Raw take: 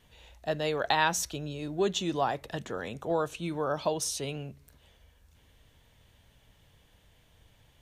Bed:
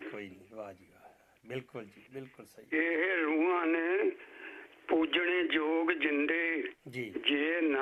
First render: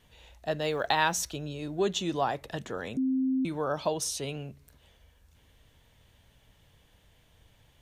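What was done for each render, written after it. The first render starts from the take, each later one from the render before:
0:00.61–0:01.33: log-companded quantiser 8 bits
0:02.97–0:03.45: beep over 262 Hz −24 dBFS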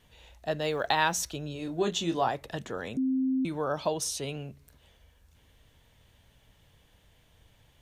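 0:01.53–0:02.29: double-tracking delay 24 ms −7 dB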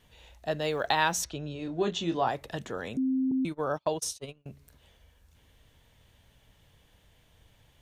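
0:01.24–0:02.27: high-frequency loss of the air 90 metres
0:03.31–0:04.46: noise gate −34 dBFS, range −37 dB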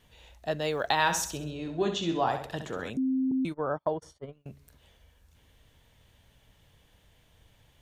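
0:00.93–0:02.90: flutter between parallel walls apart 11.3 metres, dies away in 0.47 s
0:03.54–0:04.33: Savitzky-Golay smoothing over 41 samples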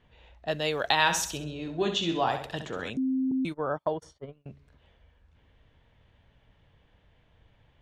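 dynamic equaliser 3,000 Hz, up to +6 dB, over −48 dBFS, Q 1.1
low-pass that shuts in the quiet parts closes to 2,400 Hz, open at −28 dBFS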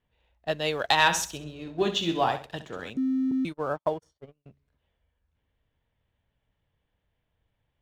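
leveller curve on the samples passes 1
expander for the loud parts 1.5 to 1, over −43 dBFS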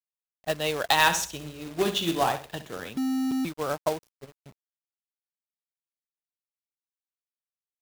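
log-companded quantiser 4 bits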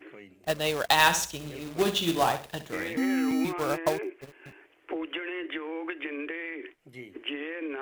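mix in bed −5 dB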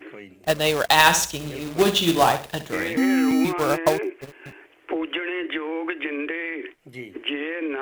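level +7 dB
brickwall limiter −2 dBFS, peak gain reduction 3 dB

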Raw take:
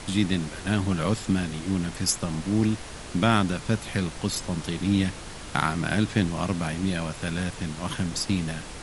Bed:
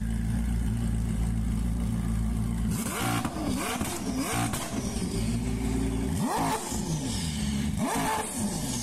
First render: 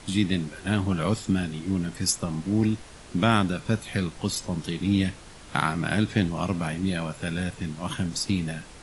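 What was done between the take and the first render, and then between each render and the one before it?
noise reduction from a noise print 7 dB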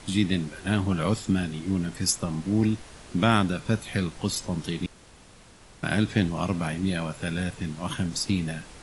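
0:04.86–0:05.83: fill with room tone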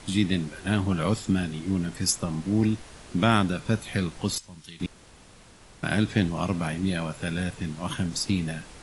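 0:04.38–0:04.80: guitar amp tone stack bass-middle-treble 5-5-5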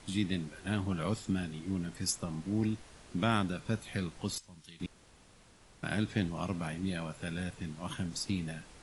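level −8.5 dB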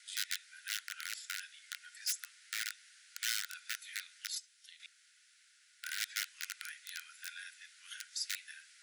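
wrap-around overflow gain 24.5 dB
Chebyshev high-pass with heavy ripple 1,400 Hz, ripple 3 dB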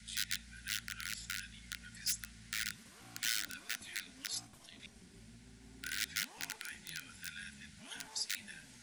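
mix in bed −29 dB

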